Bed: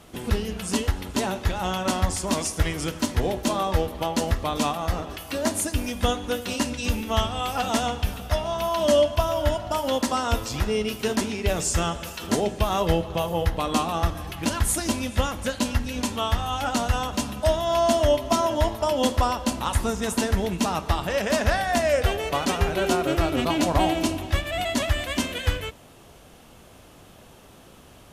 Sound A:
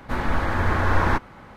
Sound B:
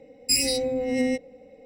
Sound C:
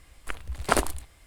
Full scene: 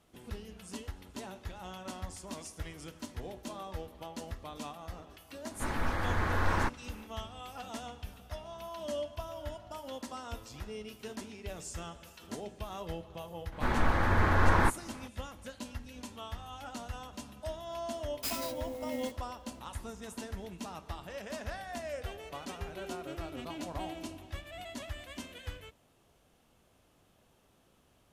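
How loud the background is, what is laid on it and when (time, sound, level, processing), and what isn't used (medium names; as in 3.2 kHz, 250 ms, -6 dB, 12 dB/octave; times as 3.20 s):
bed -18 dB
5.51 s: add A -9.5 dB + treble shelf 3.9 kHz +6 dB
13.52 s: add A -4.5 dB
17.94 s: add B -14 dB + sampling jitter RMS 0.035 ms
not used: C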